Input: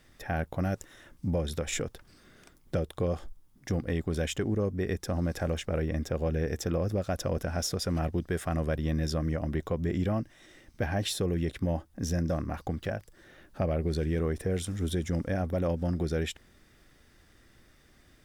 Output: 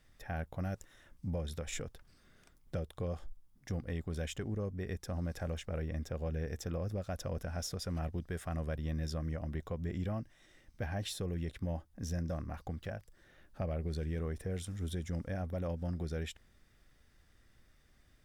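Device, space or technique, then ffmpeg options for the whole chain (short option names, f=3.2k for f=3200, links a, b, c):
low shelf boost with a cut just above: -af "lowshelf=f=73:g=7,equalizer=f=330:t=o:w=0.78:g=-4,volume=-8.5dB"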